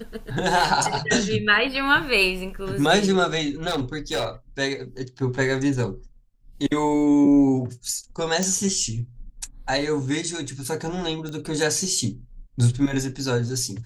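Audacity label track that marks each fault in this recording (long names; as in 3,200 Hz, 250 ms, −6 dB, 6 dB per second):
3.670000	4.270000	clipping −21 dBFS
8.430000	8.430000	click
11.290000	11.290000	click −21 dBFS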